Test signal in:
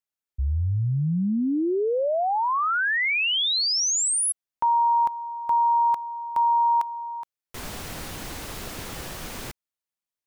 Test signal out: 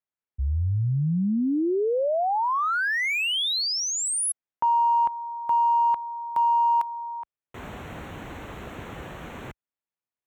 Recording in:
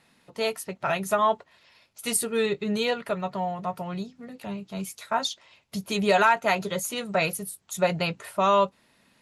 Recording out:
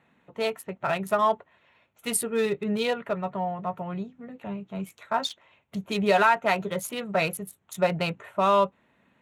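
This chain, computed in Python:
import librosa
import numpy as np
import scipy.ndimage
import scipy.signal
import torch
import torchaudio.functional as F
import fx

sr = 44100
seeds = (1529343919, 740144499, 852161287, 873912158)

y = fx.wiener(x, sr, points=9)
y = scipy.signal.sosfilt(scipy.signal.butter(2, 48.0, 'highpass', fs=sr, output='sos'), y)
y = fx.peak_eq(y, sr, hz=6200.0, db=-2.5, octaves=0.77)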